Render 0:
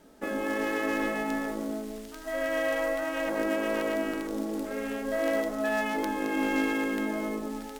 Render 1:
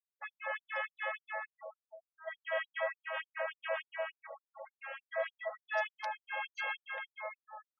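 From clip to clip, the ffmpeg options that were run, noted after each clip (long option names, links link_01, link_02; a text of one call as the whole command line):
ffmpeg -i in.wav -af "afftfilt=real='re*gte(hypot(re,im),0.0126)':imag='im*gte(hypot(re,im),0.0126)':win_size=1024:overlap=0.75,afftfilt=real='re*gte(b*sr/1024,480*pow(6400/480,0.5+0.5*sin(2*PI*3.4*pts/sr)))':imag='im*gte(b*sr/1024,480*pow(6400/480,0.5+0.5*sin(2*PI*3.4*pts/sr)))':win_size=1024:overlap=0.75,volume=-2.5dB" out.wav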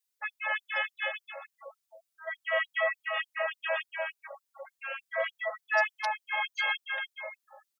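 ffmpeg -i in.wav -filter_complex "[0:a]highshelf=frequency=2500:gain=11.5,asplit=2[link_01][link_02];[link_02]adelay=4.2,afreqshift=-0.33[link_03];[link_01][link_03]amix=inputs=2:normalize=1,volume=6dB" out.wav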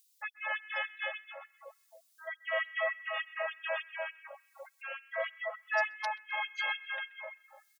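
ffmpeg -i in.wav -filter_complex "[0:a]acrossover=split=1900|2600[link_01][link_02][link_03];[link_02]aecho=1:1:130|260|390|520|650|780:0.398|0.195|0.0956|0.0468|0.023|0.0112[link_04];[link_03]acompressor=mode=upward:threshold=-50dB:ratio=2.5[link_05];[link_01][link_04][link_05]amix=inputs=3:normalize=0,volume=-4dB" out.wav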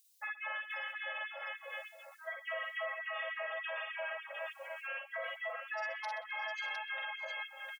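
ffmpeg -i in.wav -filter_complex "[0:a]asplit=2[link_01][link_02];[link_02]aecho=0:1:48|58|126|614|641|707:0.631|0.531|0.106|0.1|0.1|0.501[link_03];[link_01][link_03]amix=inputs=2:normalize=0,alimiter=level_in=5.5dB:limit=-24dB:level=0:latency=1:release=75,volume=-5.5dB,volume=-1.5dB" out.wav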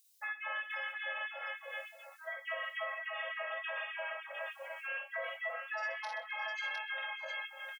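ffmpeg -i in.wav -filter_complex "[0:a]asplit=2[link_01][link_02];[link_02]adelay=24,volume=-8dB[link_03];[link_01][link_03]amix=inputs=2:normalize=0" out.wav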